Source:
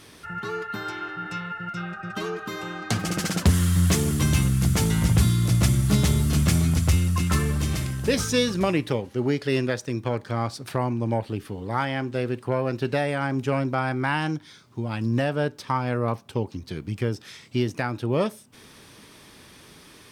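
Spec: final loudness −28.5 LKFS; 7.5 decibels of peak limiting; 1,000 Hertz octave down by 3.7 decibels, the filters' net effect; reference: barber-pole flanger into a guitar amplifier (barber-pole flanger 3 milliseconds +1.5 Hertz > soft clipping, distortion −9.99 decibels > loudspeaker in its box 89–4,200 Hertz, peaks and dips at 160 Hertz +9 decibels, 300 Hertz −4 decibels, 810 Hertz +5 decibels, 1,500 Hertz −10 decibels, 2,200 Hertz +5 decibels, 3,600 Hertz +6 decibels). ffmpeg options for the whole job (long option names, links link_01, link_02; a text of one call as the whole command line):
ffmpeg -i in.wav -filter_complex "[0:a]equalizer=frequency=1000:width_type=o:gain=-7,alimiter=limit=-17dB:level=0:latency=1,asplit=2[link_01][link_02];[link_02]adelay=3,afreqshift=1.5[link_03];[link_01][link_03]amix=inputs=2:normalize=1,asoftclip=threshold=-29.5dB,highpass=89,equalizer=frequency=160:width_type=q:width=4:gain=9,equalizer=frequency=300:width_type=q:width=4:gain=-4,equalizer=frequency=810:width_type=q:width=4:gain=5,equalizer=frequency=1500:width_type=q:width=4:gain=-10,equalizer=frequency=2200:width_type=q:width=4:gain=5,equalizer=frequency=3600:width_type=q:width=4:gain=6,lowpass=frequency=4200:width=0.5412,lowpass=frequency=4200:width=1.3066,volume=5.5dB" out.wav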